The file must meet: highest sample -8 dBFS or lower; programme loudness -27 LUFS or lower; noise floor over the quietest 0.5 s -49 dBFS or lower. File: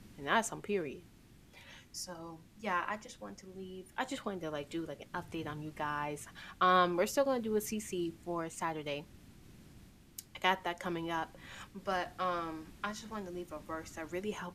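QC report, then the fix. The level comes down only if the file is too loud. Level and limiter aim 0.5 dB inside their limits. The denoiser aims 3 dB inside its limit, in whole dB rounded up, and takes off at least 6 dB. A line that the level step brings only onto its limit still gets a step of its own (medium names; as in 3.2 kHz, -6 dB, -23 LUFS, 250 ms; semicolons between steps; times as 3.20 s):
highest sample -14.0 dBFS: pass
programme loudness -36.5 LUFS: pass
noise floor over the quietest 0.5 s -59 dBFS: pass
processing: none needed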